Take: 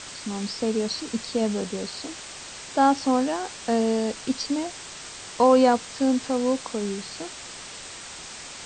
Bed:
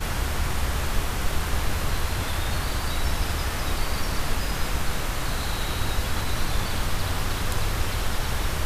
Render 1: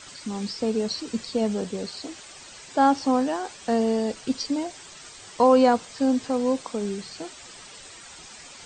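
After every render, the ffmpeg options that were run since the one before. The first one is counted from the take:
ffmpeg -i in.wav -af "afftdn=noise_reduction=9:noise_floor=-40" out.wav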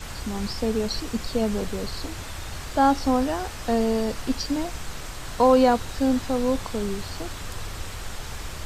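ffmpeg -i in.wav -i bed.wav -filter_complex "[1:a]volume=-9dB[link_01];[0:a][link_01]amix=inputs=2:normalize=0" out.wav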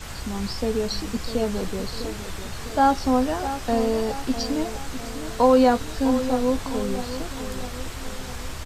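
ffmpeg -i in.wav -filter_complex "[0:a]asplit=2[link_01][link_02];[link_02]adelay=16,volume=-11dB[link_03];[link_01][link_03]amix=inputs=2:normalize=0,asplit=2[link_04][link_05];[link_05]adelay=653,lowpass=frequency=2000:poles=1,volume=-11dB,asplit=2[link_06][link_07];[link_07]adelay=653,lowpass=frequency=2000:poles=1,volume=0.54,asplit=2[link_08][link_09];[link_09]adelay=653,lowpass=frequency=2000:poles=1,volume=0.54,asplit=2[link_10][link_11];[link_11]adelay=653,lowpass=frequency=2000:poles=1,volume=0.54,asplit=2[link_12][link_13];[link_13]adelay=653,lowpass=frequency=2000:poles=1,volume=0.54,asplit=2[link_14][link_15];[link_15]adelay=653,lowpass=frequency=2000:poles=1,volume=0.54[link_16];[link_06][link_08][link_10][link_12][link_14][link_16]amix=inputs=6:normalize=0[link_17];[link_04][link_17]amix=inputs=2:normalize=0" out.wav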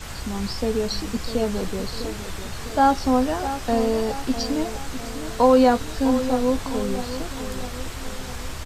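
ffmpeg -i in.wav -af "volume=1dB" out.wav

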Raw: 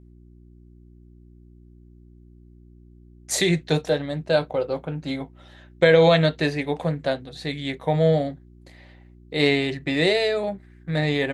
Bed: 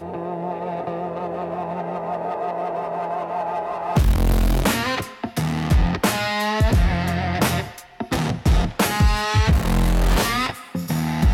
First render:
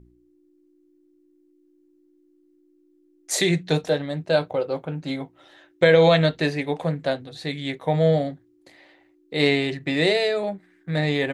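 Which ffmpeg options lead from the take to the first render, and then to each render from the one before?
ffmpeg -i in.wav -af "bandreject=frequency=60:width_type=h:width=4,bandreject=frequency=120:width_type=h:width=4,bandreject=frequency=180:width_type=h:width=4,bandreject=frequency=240:width_type=h:width=4" out.wav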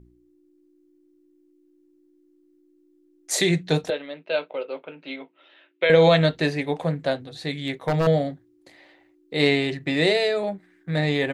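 ffmpeg -i in.wav -filter_complex "[0:a]asettb=1/sr,asplit=3[link_01][link_02][link_03];[link_01]atrim=end=3.904[link_04];[link_02]atrim=start=3.9:end=5.9,asetpts=PTS-STARTPTS,afade=type=in:duration=0.004:curve=qsin,afade=type=out:start_time=1.996:duration=0.004:curve=qsin,highpass=frequency=300:width=0.5412,highpass=frequency=300:width=1.3066,equalizer=frequency=330:width_type=q:width=4:gain=-10,equalizer=frequency=510:width_type=q:width=4:gain=-4,equalizer=frequency=770:width_type=q:width=4:gain=-10,equalizer=frequency=1100:width_type=q:width=4:gain=-4,equalizer=frequency=1700:width_type=q:width=4:gain=-5,equalizer=frequency=2600:width_type=q:width=4:gain=7,lowpass=frequency=3500:width=0.5412,lowpass=frequency=3500:width=1.3066[link_05];[link_03]atrim=start=5.896[link_06];[link_04][link_05]acrossfade=duration=0.004:curve1=hsin:curve2=qsin[link_07];[link_07][link_06]acrossfade=duration=0.004:curve1=qsin:curve2=hsin,asettb=1/sr,asplit=3[link_08][link_09][link_10];[link_08]atrim=end=7.604[link_11];[link_09]atrim=start=7.6:end=8.07,asetpts=PTS-STARTPTS,afade=type=in:duration=0.004:curve=qsin,afade=type=out:start_time=0.466:duration=0.004:curve=qsin,aeval=exprs='0.168*(abs(mod(val(0)/0.168+3,4)-2)-1)':channel_layout=same[link_12];[link_10]atrim=start=8.066[link_13];[link_11][link_12]acrossfade=duration=0.004:curve1=hsin:curve2=qsin[link_14];[link_14][link_13]acrossfade=duration=0.004:curve1=qsin:curve2=hsin" out.wav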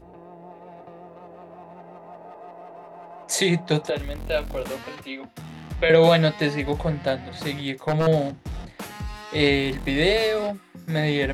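ffmpeg -i in.wav -i bed.wav -filter_complex "[1:a]volume=-16.5dB[link_01];[0:a][link_01]amix=inputs=2:normalize=0" out.wav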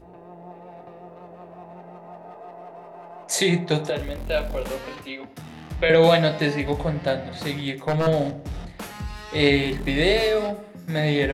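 ffmpeg -i in.wav -filter_complex "[0:a]asplit=2[link_01][link_02];[link_02]adelay=28,volume=-11dB[link_03];[link_01][link_03]amix=inputs=2:normalize=0,asplit=2[link_04][link_05];[link_05]adelay=92,lowpass=frequency=1100:poles=1,volume=-12.5dB,asplit=2[link_06][link_07];[link_07]adelay=92,lowpass=frequency=1100:poles=1,volume=0.52,asplit=2[link_08][link_09];[link_09]adelay=92,lowpass=frequency=1100:poles=1,volume=0.52,asplit=2[link_10][link_11];[link_11]adelay=92,lowpass=frequency=1100:poles=1,volume=0.52,asplit=2[link_12][link_13];[link_13]adelay=92,lowpass=frequency=1100:poles=1,volume=0.52[link_14];[link_04][link_06][link_08][link_10][link_12][link_14]amix=inputs=6:normalize=0" out.wav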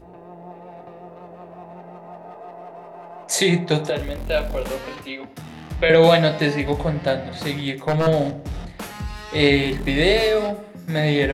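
ffmpeg -i in.wav -af "volume=2.5dB,alimiter=limit=-3dB:level=0:latency=1" out.wav

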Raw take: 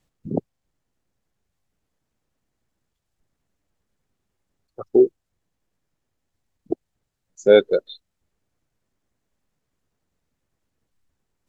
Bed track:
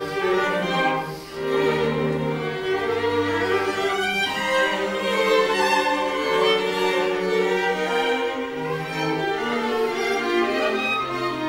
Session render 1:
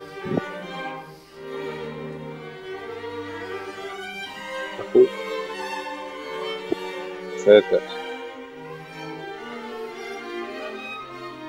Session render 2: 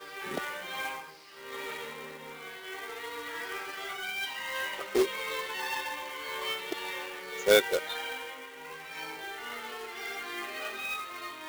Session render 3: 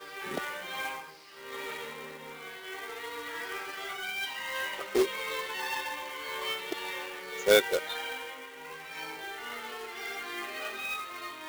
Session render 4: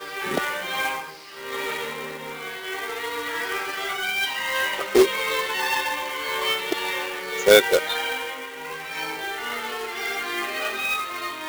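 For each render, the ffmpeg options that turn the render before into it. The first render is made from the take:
ffmpeg -i in.wav -i bed.wav -filter_complex "[1:a]volume=-11dB[link_01];[0:a][link_01]amix=inputs=2:normalize=0" out.wav
ffmpeg -i in.wav -af "bandpass=frequency=2600:width_type=q:width=0.59:csg=0,acrusher=bits=2:mode=log:mix=0:aa=0.000001" out.wav
ffmpeg -i in.wav -af anull out.wav
ffmpeg -i in.wav -af "volume=10dB,alimiter=limit=-3dB:level=0:latency=1" out.wav

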